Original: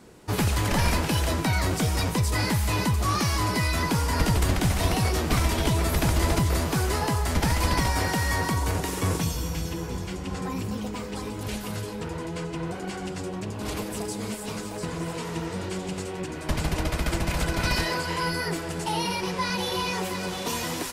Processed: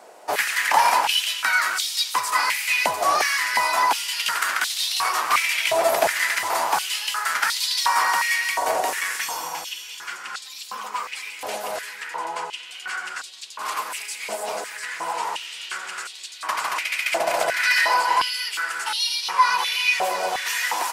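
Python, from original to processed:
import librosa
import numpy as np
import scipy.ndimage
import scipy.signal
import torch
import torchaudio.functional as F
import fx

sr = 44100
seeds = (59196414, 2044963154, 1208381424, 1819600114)

y = fx.peak_eq(x, sr, hz=3700.0, db=-2.5, octaves=0.45)
y = y + 10.0 ** (-13.5 / 20.0) * np.pad(y, (int(209 * sr / 1000.0), 0))[:len(y)]
y = fx.filter_held_highpass(y, sr, hz=2.8, low_hz=670.0, high_hz=3800.0)
y = F.gain(torch.from_numpy(y), 4.0).numpy()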